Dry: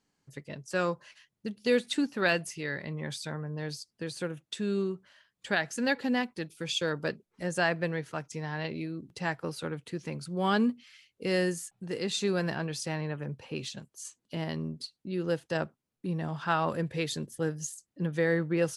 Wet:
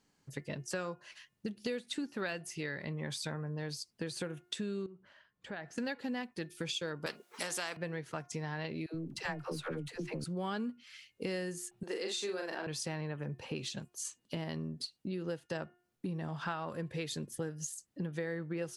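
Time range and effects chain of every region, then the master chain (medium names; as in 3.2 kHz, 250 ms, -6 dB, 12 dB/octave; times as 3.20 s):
4.86–5.78 s: low-pass 1.3 kHz 6 dB/octave + compression 2:1, threshold -53 dBFS
7.06–7.77 s: high-pass 500 Hz + spectrum-flattening compressor 2:1
8.86–10.24 s: partial rectifier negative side -3 dB + phase dispersion lows, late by 84 ms, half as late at 520 Hz
11.83–12.67 s: high-pass 300 Hz 24 dB/octave + doubling 43 ms -3.5 dB
whole clip: compression 6:1, threshold -39 dBFS; de-hum 356.2 Hz, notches 8; trim +3.5 dB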